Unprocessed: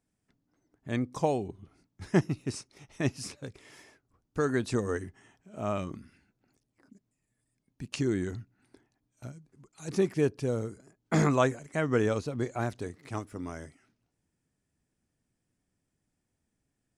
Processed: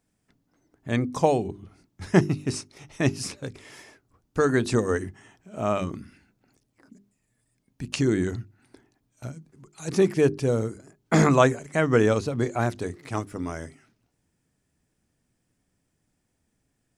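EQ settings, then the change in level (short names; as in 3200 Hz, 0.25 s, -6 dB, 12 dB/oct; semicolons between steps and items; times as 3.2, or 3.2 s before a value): notches 50/100/150/200/250/300/350/400 Hz; +7.0 dB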